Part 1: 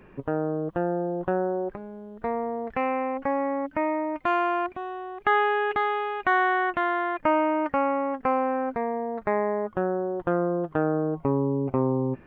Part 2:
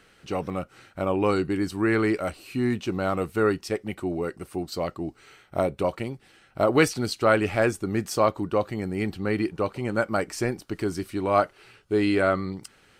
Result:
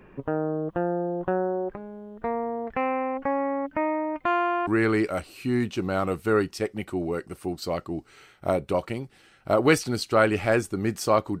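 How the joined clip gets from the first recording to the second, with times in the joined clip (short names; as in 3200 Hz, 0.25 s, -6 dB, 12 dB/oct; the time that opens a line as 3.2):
part 1
4.67 switch to part 2 from 1.77 s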